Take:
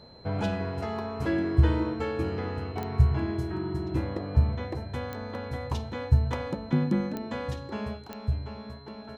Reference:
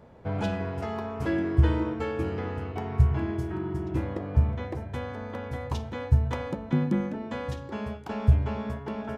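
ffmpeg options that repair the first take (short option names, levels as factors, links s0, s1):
-af "adeclick=t=4,bandreject=f=4100:w=30,asetnsamples=n=441:p=0,asendcmd='8.06 volume volume 8.5dB',volume=1"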